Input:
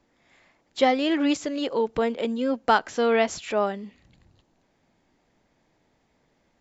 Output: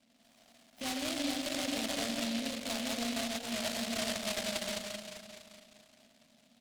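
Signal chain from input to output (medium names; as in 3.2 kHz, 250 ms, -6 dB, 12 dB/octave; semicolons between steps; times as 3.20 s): chunks repeated in reverse 113 ms, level -7 dB; peak limiter -15.5 dBFS, peak gain reduction 10 dB; two resonant band-passes 390 Hz, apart 1.5 oct; on a send: bouncing-ball echo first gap 440 ms, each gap 0.65×, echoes 5; on the sum: compression 12:1, threshold -41 dBFS, peak gain reduction 17 dB; transient shaper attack -8 dB, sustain -4 dB; spring tank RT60 2.7 s, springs 42/57 ms, chirp 50 ms, DRR 3 dB; delay time shaken by noise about 3.2 kHz, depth 0.26 ms; trim +8 dB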